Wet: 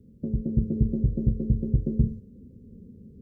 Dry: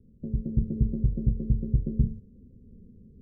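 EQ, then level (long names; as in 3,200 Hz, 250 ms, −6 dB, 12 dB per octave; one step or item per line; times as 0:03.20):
high-pass filter 100 Hz 6 dB per octave
dynamic equaliser 160 Hz, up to −3 dB, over −37 dBFS, Q 1.2
+6.5 dB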